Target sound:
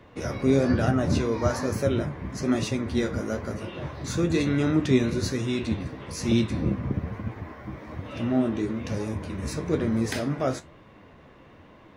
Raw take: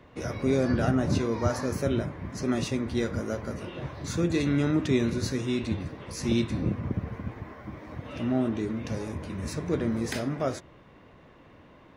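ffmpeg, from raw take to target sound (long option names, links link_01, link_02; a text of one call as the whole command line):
ffmpeg -i in.wav -af "flanger=delay=9:depth=6.6:regen=57:speed=1.1:shape=sinusoidal,volume=6.5dB" out.wav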